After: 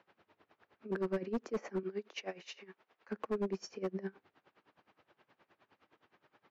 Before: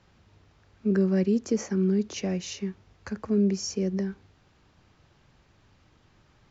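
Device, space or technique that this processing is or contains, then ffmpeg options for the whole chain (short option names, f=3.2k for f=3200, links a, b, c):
helicopter radio: -filter_complex "[0:a]asettb=1/sr,asplit=3[a][b][c];[a]atrim=end=1.834[d];[b]atrim=start=1.83:end=3.09,asetpts=PTS-STARTPTS,afade=t=in:d=0.004:c=qsin,afade=t=out:st=1.256:d=0.004:c=qsin,highpass=f=670:p=1[e];[c]atrim=start=3.086[f];[d][e]acrossfade=d=0.004:c1=hsin:c2=qsin[g];[g][f]acrossfade=d=0.004:c1=qsin:c2=hsin,highpass=360,lowpass=2.6k,aeval=exprs='val(0)*pow(10,-21*(0.5-0.5*cos(2*PI*9.6*n/s))/20)':c=same,asoftclip=type=hard:threshold=-32dB,volume=2.5dB"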